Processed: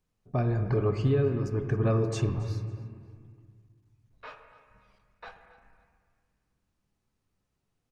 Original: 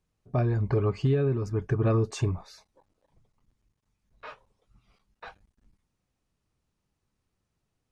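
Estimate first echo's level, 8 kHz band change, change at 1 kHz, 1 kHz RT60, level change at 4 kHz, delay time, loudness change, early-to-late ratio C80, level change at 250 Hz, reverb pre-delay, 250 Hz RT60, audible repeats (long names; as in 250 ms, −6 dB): −19.0 dB, −1.5 dB, −0.5 dB, 1.9 s, −1.0 dB, 275 ms, −1.0 dB, 8.5 dB, −0.5 dB, 4 ms, 2.6 s, 1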